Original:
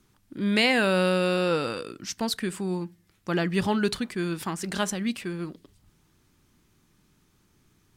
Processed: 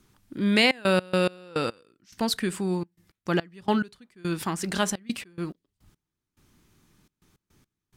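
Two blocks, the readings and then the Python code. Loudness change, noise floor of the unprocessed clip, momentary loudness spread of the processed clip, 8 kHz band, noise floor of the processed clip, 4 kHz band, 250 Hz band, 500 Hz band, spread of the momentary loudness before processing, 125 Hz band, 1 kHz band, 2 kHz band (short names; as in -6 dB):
-0.5 dB, -66 dBFS, 16 LU, +0.5 dB, under -85 dBFS, +0.5 dB, -0.5 dB, -1.0 dB, 14 LU, -0.5 dB, 0.0 dB, -0.5 dB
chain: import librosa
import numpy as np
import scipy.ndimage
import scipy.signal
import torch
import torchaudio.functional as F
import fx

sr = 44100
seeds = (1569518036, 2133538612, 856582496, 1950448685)

y = fx.step_gate(x, sr, bpm=106, pattern='xxxxx.x.x..x...', floor_db=-24.0, edge_ms=4.5)
y = F.gain(torch.from_numpy(y), 2.0).numpy()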